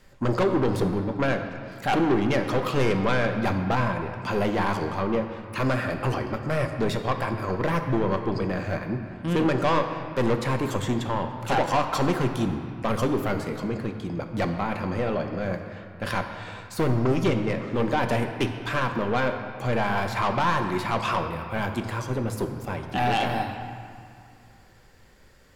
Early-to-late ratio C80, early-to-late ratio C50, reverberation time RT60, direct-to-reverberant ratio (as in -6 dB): 7.5 dB, 7.0 dB, 2.3 s, 5.0 dB